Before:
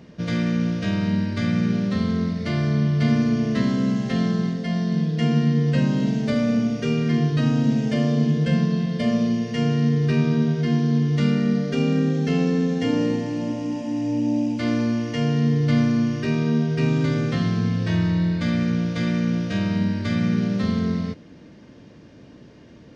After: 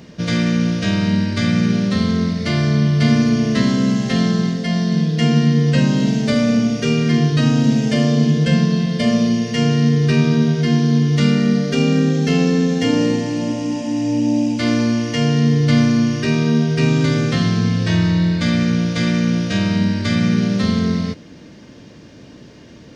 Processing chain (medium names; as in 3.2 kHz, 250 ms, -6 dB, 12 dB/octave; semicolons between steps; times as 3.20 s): treble shelf 3.4 kHz +9 dB; trim +5 dB